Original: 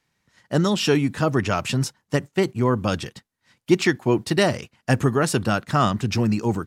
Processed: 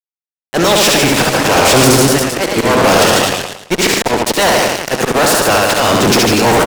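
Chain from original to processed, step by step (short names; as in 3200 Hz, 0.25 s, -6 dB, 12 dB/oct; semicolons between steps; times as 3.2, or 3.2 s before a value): spectral limiter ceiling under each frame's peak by 17 dB; auto swell 0.53 s; HPF 120 Hz 12 dB/oct; bell 580 Hz +7.5 dB 1.2 oct; notch 1200 Hz, Q 22; reverse bouncing-ball echo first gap 70 ms, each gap 1.15×, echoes 5; fuzz box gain 37 dB, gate -40 dBFS; 1.23–4.02 warbling echo 0.111 s, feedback 37%, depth 106 cents, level -4 dB; gain +5 dB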